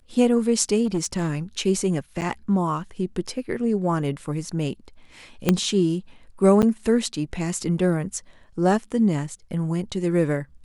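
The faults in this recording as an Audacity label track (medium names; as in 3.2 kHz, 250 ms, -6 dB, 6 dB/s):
0.850000	1.300000	clipped -18.5 dBFS
2.210000	2.220000	dropout 8.2 ms
5.490000	5.490000	pop -4 dBFS
6.620000	6.630000	dropout 8.7 ms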